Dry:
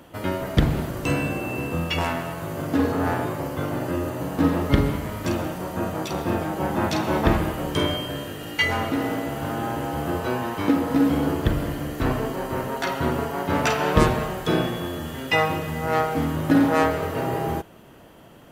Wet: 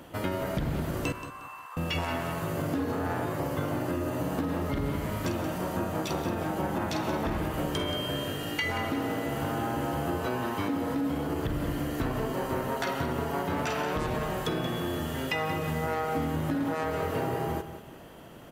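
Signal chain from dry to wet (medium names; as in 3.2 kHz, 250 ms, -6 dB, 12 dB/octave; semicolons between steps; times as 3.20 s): peak limiter -15 dBFS, peak gain reduction 11.5 dB; compression, threshold -27 dBFS, peak gain reduction 8 dB; 1.12–1.77 s: ladder high-pass 1 kHz, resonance 75%; on a send: feedback delay 179 ms, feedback 31%, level -11.5 dB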